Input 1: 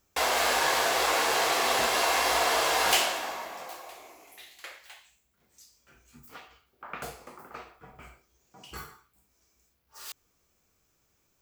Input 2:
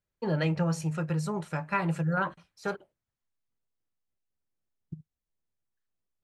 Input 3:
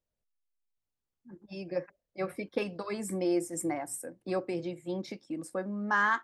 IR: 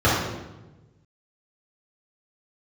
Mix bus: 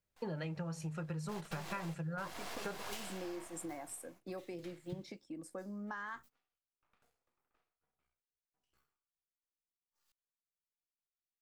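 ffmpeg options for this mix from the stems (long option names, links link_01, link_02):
-filter_complex "[0:a]aeval=exprs='max(val(0),0)':channel_layout=same,volume=-12dB[link_01];[1:a]volume=-1dB[link_02];[2:a]acompressor=threshold=-33dB:ratio=4,volume=-7.5dB,asplit=2[link_03][link_04];[link_04]apad=whole_len=503254[link_05];[link_01][link_05]sidechaingate=range=-23dB:threshold=-58dB:ratio=16:detection=peak[link_06];[link_06][link_02][link_03]amix=inputs=3:normalize=0,acompressor=threshold=-38dB:ratio=8"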